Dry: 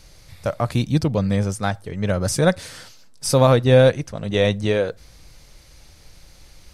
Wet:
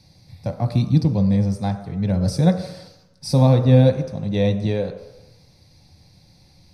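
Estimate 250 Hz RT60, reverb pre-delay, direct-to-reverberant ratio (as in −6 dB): 0.80 s, 3 ms, 6.0 dB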